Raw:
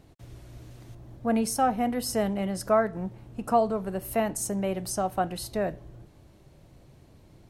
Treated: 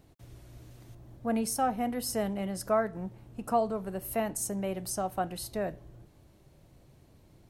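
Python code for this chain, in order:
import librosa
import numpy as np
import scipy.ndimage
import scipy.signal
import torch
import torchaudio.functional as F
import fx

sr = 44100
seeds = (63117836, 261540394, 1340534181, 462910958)

y = fx.high_shelf(x, sr, hz=11000.0, db=7.5)
y = y * 10.0 ** (-4.5 / 20.0)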